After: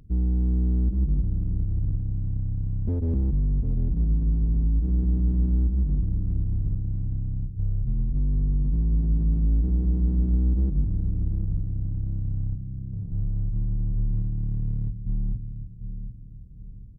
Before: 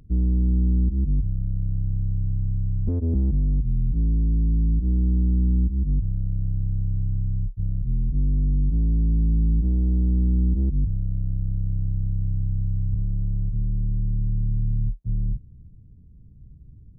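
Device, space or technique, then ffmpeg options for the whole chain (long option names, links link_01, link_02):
parallel distortion: -filter_complex "[0:a]asettb=1/sr,asplit=3[link_01][link_02][link_03];[link_01]atrim=end=12.554[link_04];[link_02]atrim=start=12.55:end=13.12,asetpts=PTS-STARTPTS,afade=type=in:duration=0.004:curve=qsin,afade=type=out:start_time=0.566:duration=0.004:curve=qsin,highpass=frequency=190:poles=1[link_05];[link_03]atrim=start=13.116[link_06];[link_04][link_05]acrossfade=duration=0.004:curve1=hsin:curve2=qsin[link_07];[link_07][link_06]acrossfade=duration=0.004:curve1=qsin:curve2=hsin,aecho=1:1:748|1496|2244|2992:0.355|0.124|0.0435|0.0152,asplit=2[link_08][link_09];[link_09]asoftclip=type=hard:threshold=-24.5dB,volume=-7dB[link_10];[link_08][link_10]amix=inputs=2:normalize=0,volume=-4dB"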